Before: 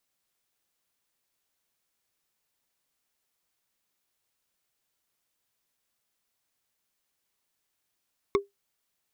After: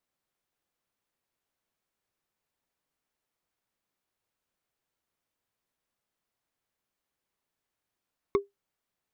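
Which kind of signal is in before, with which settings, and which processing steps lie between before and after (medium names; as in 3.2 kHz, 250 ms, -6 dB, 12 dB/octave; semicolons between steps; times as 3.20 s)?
wood hit, lowest mode 400 Hz, decay 0.16 s, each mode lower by 4 dB, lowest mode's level -16 dB
treble shelf 2.5 kHz -10.5 dB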